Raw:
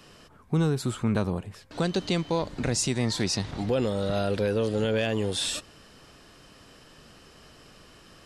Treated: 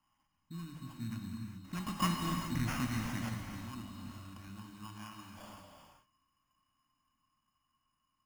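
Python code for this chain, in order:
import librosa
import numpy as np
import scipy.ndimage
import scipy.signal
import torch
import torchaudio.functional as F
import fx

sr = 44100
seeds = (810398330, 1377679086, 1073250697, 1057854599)

y = fx.law_mismatch(x, sr, coded='A')
y = fx.doppler_pass(y, sr, speed_mps=14, closest_m=4.5, pass_at_s=2.31)
y = scipy.signal.sosfilt(scipy.signal.ellip(3, 1.0, 40, [290.0, 2000.0], 'bandstop', fs=sr, output='sos'), y)
y = fx.air_absorb(y, sr, metres=79.0)
y = fx.small_body(y, sr, hz=(650.0, 1400.0, 2900.0), ring_ms=25, db=18)
y = fx.sample_hold(y, sr, seeds[0], rate_hz=4000.0, jitter_pct=0)
y = fx.peak_eq(y, sr, hz=420.0, db=-10.5, octaves=0.7)
y = fx.hum_notches(y, sr, base_hz=50, count=4)
y = fx.rev_gated(y, sr, seeds[1], gate_ms=450, shape='flat', drr_db=1.5)
y = y * 10.0 ** (-2.0 / 20.0)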